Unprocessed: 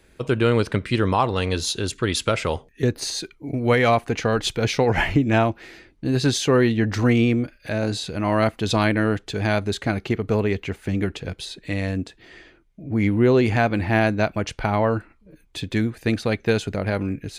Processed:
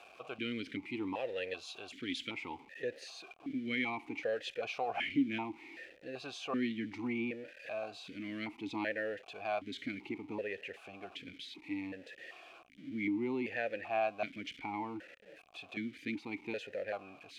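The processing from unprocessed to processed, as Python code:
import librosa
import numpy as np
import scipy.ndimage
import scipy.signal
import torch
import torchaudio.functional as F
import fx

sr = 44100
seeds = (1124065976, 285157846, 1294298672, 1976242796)

y = x + 0.5 * 10.0 ** (-32.0 / 20.0) * np.sign(x)
y = fx.tilt_shelf(y, sr, db=-4.0, hz=1100.0)
y = fx.vowel_held(y, sr, hz=2.6)
y = y * librosa.db_to_amplitude(-4.0)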